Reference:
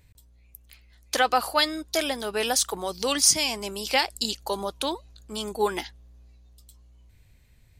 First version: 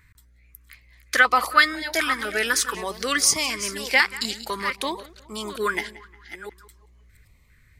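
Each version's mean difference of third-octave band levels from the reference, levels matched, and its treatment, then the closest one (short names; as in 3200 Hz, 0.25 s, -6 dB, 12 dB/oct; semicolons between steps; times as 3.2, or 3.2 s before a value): 5.0 dB: reverse delay 0.433 s, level -12 dB; band shelf 1500 Hz +13.5 dB 1.3 oct; on a send: tape echo 0.18 s, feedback 41%, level -17.5 dB, low-pass 3200 Hz; on the sum: stepped notch 4 Hz 630–1600 Hz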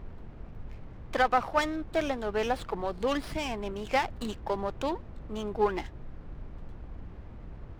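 9.5 dB: block floating point 5-bit; added noise brown -40 dBFS; air absorption 460 m; running maximum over 5 samples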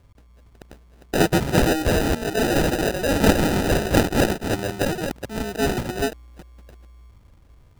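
13.0 dB: reverse delay 0.292 s, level -3 dB; dynamic EQ 2400 Hz, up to +7 dB, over -38 dBFS, Q 0.76; in parallel at -4.5 dB: wavefolder -21 dBFS; on the sum: sample-and-hold 40×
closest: first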